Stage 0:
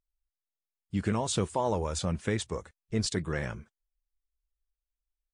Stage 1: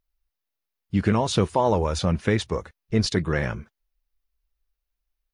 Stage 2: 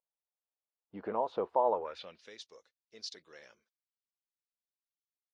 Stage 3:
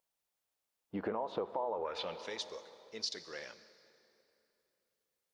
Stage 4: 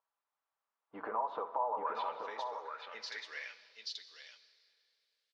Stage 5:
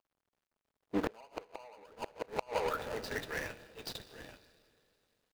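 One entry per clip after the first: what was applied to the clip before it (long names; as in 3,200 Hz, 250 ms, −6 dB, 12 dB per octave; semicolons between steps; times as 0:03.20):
parametric band 8,000 Hz −14 dB 0.48 octaves; notch filter 3,300 Hz, Q 29; level +8 dB
octave-band graphic EQ 125/250/500/4,000/8,000 Hz −4/+5/+11/+7/−5 dB; band-pass filter sweep 880 Hz → 5,900 Hz, 0:01.70–0:02.26; high-shelf EQ 3,500 Hz −7.5 dB; level −8.5 dB
brickwall limiter −27 dBFS, peak gain reduction 10.5 dB; convolution reverb RT60 3.0 s, pre-delay 3 ms, DRR 14 dB; downward compressor 5 to 1, threshold −42 dBFS, peak gain reduction 10 dB; level +8.5 dB
notch comb filter 180 Hz; on a send: multi-tap delay 63/831 ms −15.5/−5.5 dB; on the sum: band-pass filter sweep 1,100 Hz → 3,400 Hz, 0:02.41–0:04.01; level +9 dB
running median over 41 samples; gate with flip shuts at −38 dBFS, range −30 dB; level +18 dB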